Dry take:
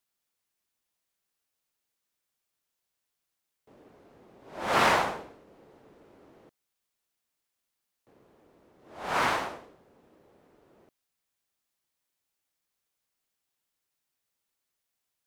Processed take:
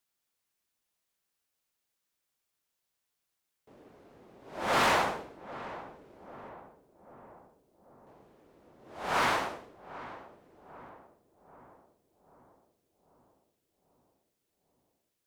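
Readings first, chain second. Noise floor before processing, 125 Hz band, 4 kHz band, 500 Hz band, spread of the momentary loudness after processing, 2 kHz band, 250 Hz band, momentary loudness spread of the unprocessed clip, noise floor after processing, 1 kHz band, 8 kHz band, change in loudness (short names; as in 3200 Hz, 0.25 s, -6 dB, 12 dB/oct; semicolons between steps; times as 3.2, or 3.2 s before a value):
-84 dBFS, -1.5 dB, -0.5 dB, -1.5 dB, 24 LU, -1.5 dB, -1.0 dB, 19 LU, -84 dBFS, -1.5 dB, -0.5 dB, -3.5 dB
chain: hard clip -21.5 dBFS, distortion -11 dB; darkening echo 0.79 s, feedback 63%, low-pass 1100 Hz, level -13.5 dB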